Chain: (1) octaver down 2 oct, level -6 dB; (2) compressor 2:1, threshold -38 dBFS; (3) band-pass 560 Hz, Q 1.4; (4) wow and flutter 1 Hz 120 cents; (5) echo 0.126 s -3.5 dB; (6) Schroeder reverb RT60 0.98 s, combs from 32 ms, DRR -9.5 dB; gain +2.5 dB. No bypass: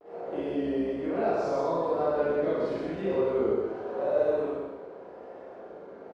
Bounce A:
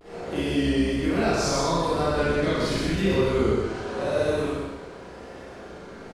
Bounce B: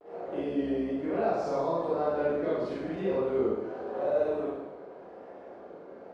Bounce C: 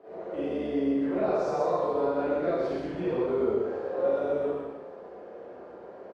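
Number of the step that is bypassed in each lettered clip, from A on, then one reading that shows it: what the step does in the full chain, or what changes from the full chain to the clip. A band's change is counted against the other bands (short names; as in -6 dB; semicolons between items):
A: 3, 125 Hz band +9.0 dB; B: 5, echo-to-direct 11.5 dB to 9.5 dB; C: 4, 250 Hz band +2.0 dB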